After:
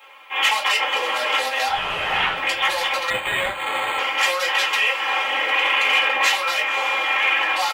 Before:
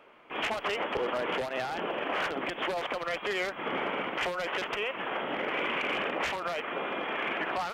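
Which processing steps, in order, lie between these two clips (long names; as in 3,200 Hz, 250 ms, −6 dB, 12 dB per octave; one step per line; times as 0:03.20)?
high-pass filter 420 Hz 12 dB per octave
comb filter 3.7 ms, depth 81%
0:01.68–0:02.36: linear-prediction vocoder at 8 kHz whisper
spectral tilt +4 dB per octave
feedback delay with all-pass diffusion 555 ms, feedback 43%, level −12 dB
convolution reverb RT60 0.25 s, pre-delay 3 ms, DRR −2.5 dB
0:03.10–0:03.99: linearly interpolated sample-rate reduction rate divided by 8×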